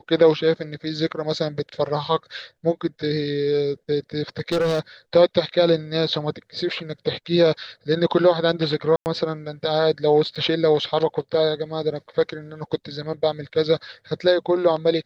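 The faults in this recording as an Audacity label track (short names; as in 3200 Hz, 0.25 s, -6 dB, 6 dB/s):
4.400000	4.800000	clipped -17.5 dBFS
8.960000	9.060000	gap 99 ms
10.350000	10.360000	gap 6.3 ms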